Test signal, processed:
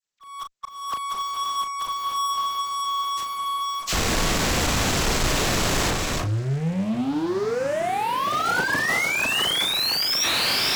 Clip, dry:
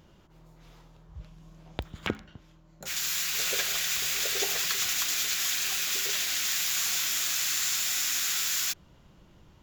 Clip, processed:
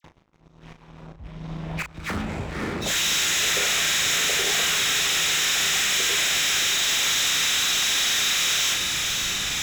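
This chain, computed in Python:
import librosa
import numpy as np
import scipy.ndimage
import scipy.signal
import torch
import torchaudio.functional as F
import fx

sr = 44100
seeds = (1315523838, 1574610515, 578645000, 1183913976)

p1 = fx.freq_compress(x, sr, knee_hz=1100.0, ratio=1.5)
p2 = fx.high_shelf(p1, sr, hz=2700.0, db=-2.0)
p3 = p2 + fx.echo_diffused(p2, sr, ms=562, feedback_pct=67, wet_db=-12.0, dry=0)
p4 = fx.over_compress(p3, sr, threshold_db=-30.0, ratio=-0.5)
p5 = fx.dispersion(p4, sr, late='lows', ms=43.0, hz=1700.0)
p6 = fx.fuzz(p5, sr, gain_db=46.0, gate_db=-55.0)
p7 = p5 + (p6 * librosa.db_to_amplitude(-11.0))
p8 = fx.auto_swell(p7, sr, attack_ms=410.0)
p9 = fx.doubler(p8, sr, ms=37.0, db=-7.0)
y = p9 * librosa.db_to_amplitude(-1.5)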